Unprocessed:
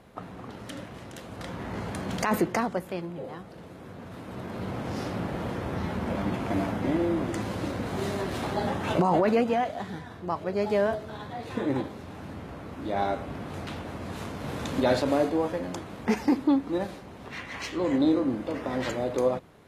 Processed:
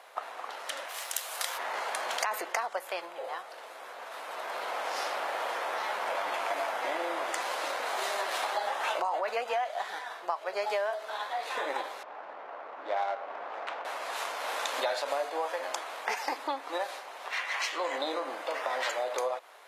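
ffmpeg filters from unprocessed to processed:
-filter_complex "[0:a]asplit=3[s0][s1][s2];[s0]afade=t=out:st=0.88:d=0.02[s3];[s1]aemphasis=mode=production:type=riaa,afade=t=in:st=0.88:d=0.02,afade=t=out:st=1.57:d=0.02[s4];[s2]afade=t=in:st=1.57:d=0.02[s5];[s3][s4][s5]amix=inputs=3:normalize=0,asettb=1/sr,asplit=3[s6][s7][s8];[s6]atrim=end=12.034[s9];[s7]atrim=start=12.03:end=13.85,asetpts=PTS-STARTPTS,afade=t=in:d=0.004:c=qsin,afade=t=out:st=1.816:d=0.004:c=qsin,adynamicsmooth=sensitivity=3:basefreq=1200[s10];[s8]atrim=start=13.846[s11];[s9][s10]acrossfade=d=0.004:c1=hsin:c2=qsin[s12];[s12][s11]acrossfade=d=0.004:c1=qsin:c2=hsin,highpass=f=640:w=0.5412,highpass=f=640:w=1.3066,acompressor=threshold=0.0178:ratio=6,volume=2.24"

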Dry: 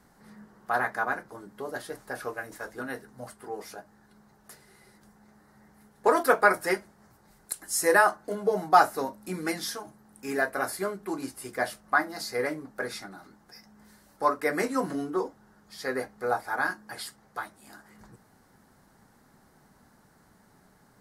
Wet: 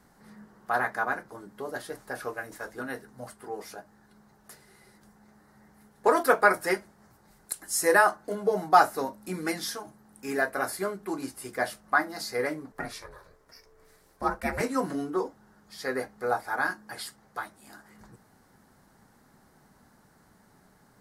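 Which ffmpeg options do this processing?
-filter_complex "[0:a]asettb=1/sr,asplit=3[s0][s1][s2];[s0]atrim=end=12.724[s3];[s1]atrim=start=12.72:end=14.61,asetpts=PTS-STARTPTS,afade=t=in:d=0.004:c=qsin,afade=t=out:st=1.886:d=0.004:c=qsin,aeval=exprs='val(0)*sin(2*PI*230*n/s)':c=same[s4];[s2]atrim=start=14.606[s5];[s3][s4]acrossfade=d=0.004:c1=hsin:c2=qsin[s6];[s6][s5]acrossfade=d=0.004:c1=qsin:c2=hsin"

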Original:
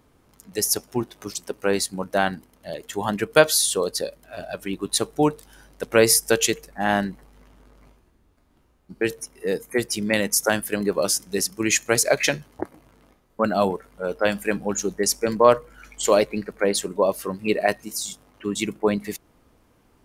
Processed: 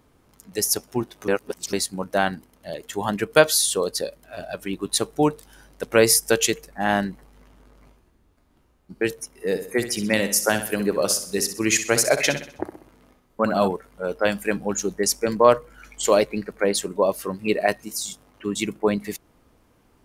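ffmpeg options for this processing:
-filter_complex "[0:a]asettb=1/sr,asplit=3[s0][s1][s2];[s0]atrim=end=9.324[s3];[s1]atrim=start=9.32:end=13.68,asetpts=PTS-STARTPTS,afade=t=in:d=0.004:c=qsin,afade=t=out:st=4.356:d=0.004:c=qsin,aecho=1:1:64|128|192|256|320:0.299|0.131|0.0578|0.0254|0.0112,atrim=end_sample=192276[s4];[s2]atrim=start=13.676[s5];[s3][s4]acrossfade=d=0.004:c1=hsin:c2=qsin[s6];[s6][s5]acrossfade=d=0.004:c1=qsin:c2=hsin,asplit=3[s7][s8][s9];[s7]atrim=end=1.282[s10];[s8]atrim=start=1.278:end=1.732,asetpts=PTS-STARTPTS,areverse[s11];[s9]atrim=start=1.728[s12];[s10][s11]acrossfade=d=0.004:c1=hsin:c2=hsin[s13];[s13][s12]acrossfade=d=0.004:c1=hsin:c2=hsin"

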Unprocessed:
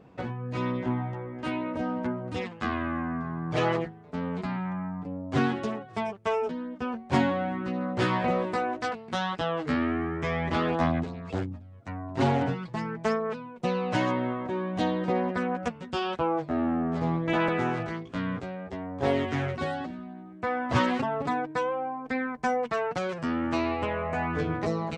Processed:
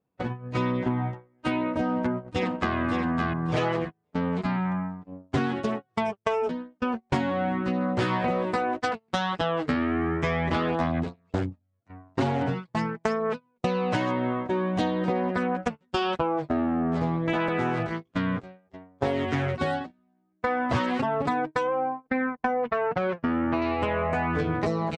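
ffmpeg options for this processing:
-filter_complex "[0:a]asplit=2[s0][s1];[s1]afade=t=in:st=1.85:d=0.01,afade=t=out:st=2.76:d=0.01,aecho=0:1:570|1140|1710|2280:0.707946|0.176986|0.0442466|0.0110617[s2];[s0][s2]amix=inputs=2:normalize=0,asettb=1/sr,asplit=3[s3][s4][s5];[s3]atrim=end=21.674[s6];[s4]atrim=start=21.67:end=23.62,asetpts=PTS-STARTPTS,afade=t=in:d=0.004:c=qsin,afade=t=out:st=1.946:d=0.004:c=qsin,lowpass=2300[s7];[s5]atrim=start=23.616[s8];[s6][s7]acrossfade=d=0.004:c1=hsin:c2=qsin[s9];[s9][s8]acrossfade=d=0.004:c1=qsin:c2=hsin,agate=range=0.02:threshold=0.0251:ratio=16:detection=peak,adynamicequalizer=threshold=0.00112:dfrequency=6600:dqfactor=2.3:tfrequency=6600:tqfactor=2.3:attack=5:release=100:ratio=0.375:range=2:mode=cutabove:tftype=bell,acompressor=threshold=0.0316:ratio=6,volume=2.37"

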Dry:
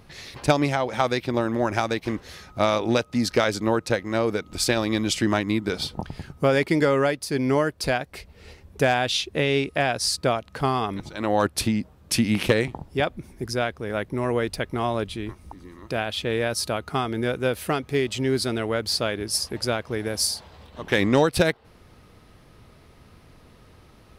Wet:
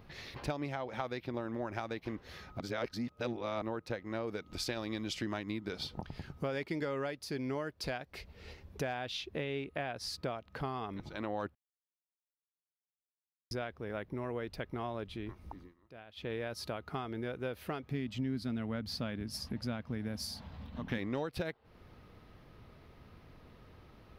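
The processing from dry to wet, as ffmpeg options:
-filter_complex "[0:a]asettb=1/sr,asplit=3[s0][s1][s2];[s0]atrim=end=4.274[s3];[s1]atrim=start=4.27:end=8.82,asetpts=PTS-STARTPTS,afade=t=in:d=0.004:c=qsin,afade=t=out:st=4.546:d=0.004:c=qsin,equalizer=f=6600:t=o:w=2.1:g=5.5[s4];[s2]atrim=start=8.816[s5];[s3][s4]acrossfade=d=0.004:c1=hsin:c2=qsin[s6];[s6][s5]acrossfade=d=0.004:c1=qsin:c2=hsin,asettb=1/sr,asplit=3[s7][s8][s9];[s7]atrim=end=9.444[s10];[s8]atrim=start=9.44:end=9.97,asetpts=PTS-STARTPTS,afade=t=in:d=0.004:c=qsin,afade=t=out:st=0.526:d=0.004:c=qsin,equalizer=f=5300:w=4.3:g=-12.5[s11];[s9]atrim=start=9.966[s12];[s10][s11]acrossfade=d=0.004:c1=hsin:c2=qsin[s13];[s13][s12]acrossfade=d=0.004:c1=qsin:c2=hsin,asettb=1/sr,asplit=3[s14][s15][s16];[s14]atrim=end=17.914[s17];[s15]atrim=start=17.91:end=20.98,asetpts=PTS-STARTPTS,afade=t=in:d=0.004:c=qsin,afade=t=out:st=3.066:d=0.004:c=qsin,lowshelf=f=300:t=q:w=3:g=6[s18];[s16]atrim=start=20.976[s19];[s17][s18]acrossfade=d=0.004:c1=hsin:c2=qsin[s20];[s20][s19]acrossfade=d=0.004:c1=qsin:c2=hsin,asplit=7[s21][s22][s23][s24][s25][s26][s27];[s21]atrim=end=2.602[s28];[s22]atrim=start=2.598:end=3.622,asetpts=PTS-STARTPTS,areverse[s29];[s23]atrim=start=3.618:end=11.55,asetpts=PTS-STARTPTS,afade=t=out:st=7.928:d=0.004:c=hsin[s30];[s24]atrim=start=11.55:end=13.51,asetpts=PTS-STARTPTS,volume=0[s31];[s25]atrim=start=13.51:end=15.74,asetpts=PTS-STARTPTS,afade=t=in:d=0.004:c=hsin,afade=t=out:st=2.05:d=0.18:silence=0.0944061[s32];[s26]atrim=start=15.74:end=16.15,asetpts=PTS-STARTPTS,volume=0.0944[s33];[s27]atrim=start=16.15,asetpts=PTS-STARTPTS,afade=t=in:d=0.18:silence=0.0944061[s34];[s28][s29]acrossfade=d=0.004:c1=hsin:c2=hsin[s35];[s30][s31][s32][s33][s34]concat=n=5:v=0:a=1[s36];[s35][s36]acrossfade=d=0.004:c1=hsin:c2=hsin,equalizer=f=8600:t=o:w=1.1:g=-14,acompressor=threshold=0.02:ratio=2.5,volume=0.562"

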